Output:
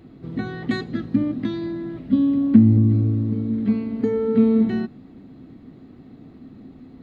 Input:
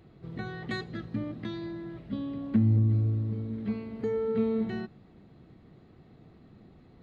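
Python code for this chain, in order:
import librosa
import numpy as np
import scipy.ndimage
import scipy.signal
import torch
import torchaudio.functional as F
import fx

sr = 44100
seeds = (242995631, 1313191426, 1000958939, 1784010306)

y = fx.peak_eq(x, sr, hz=260.0, db=14.5, octaves=0.45)
y = y * 10.0 ** (5.5 / 20.0)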